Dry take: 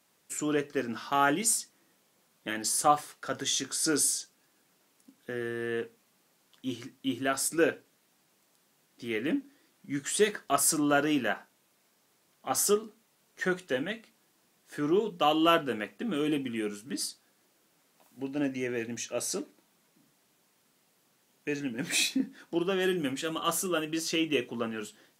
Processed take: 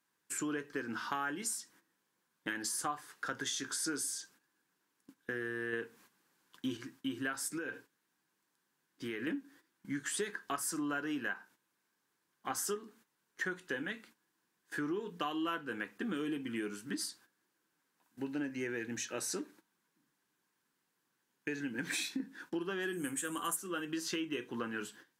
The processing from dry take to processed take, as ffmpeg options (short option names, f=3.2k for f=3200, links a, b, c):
-filter_complex "[0:a]asettb=1/sr,asplit=3[a][b][c];[a]atrim=end=7.564[d];[b]atrim=start=7.56:end=9.27,asetpts=PTS-STARTPTS,afade=t=in:d=0.004:c=qsin,afade=t=out:st=1.706:d=0.004:c=qsin,acompressor=threshold=-34dB:ratio=16:attack=3.2:release=140:knee=1:detection=peak[e];[c]atrim=start=9.266[f];[d][e]acrossfade=d=0.004:c1=hsin:c2=qsin[g];[g][f]acrossfade=d=0.004:c1=qsin:c2=hsin,asplit=3[h][i][j];[h]afade=t=out:st=22.92:d=0.02[k];[i]highshelf=f=6.4k:t=q:w=3:g=11.5,afade=t=in:st=22.92:d=0.02,afade=t=out:st=23.55:d=0.02[l];[j]afade=t=in:st=23.55:d=0.02[m];[k][l][m]amix=inputs=3:normalize=0,asplit=3[n][o][p];[n]atrim=end=5.732[q];[o]atrim=start=5.728:end=6.772,asetpts=PTS-STARTPTS,volume=6dB[r];[p]atrim=start=6.768[s];[q][r]acrossfade=d=0.004:c1=hsin:c2=hsin[t];[t][s]acrossfade=d=0.004:c1=hsin:c2=hsin,agate=range=-12dB:threshold=-55dB:ratio=16:detection=peak,equalizer=f=315:t=o:w=0.33:g=4,equalizer=f=630:t=o:w=0.33:g=-9,equalizer=f=1k:t=o:w=0.33:g=6,equalizer=f=1.6k:t=o:w=0.33:g=10,acompressor=threshold=-33dB:ratio=6,volume=-1.5dB"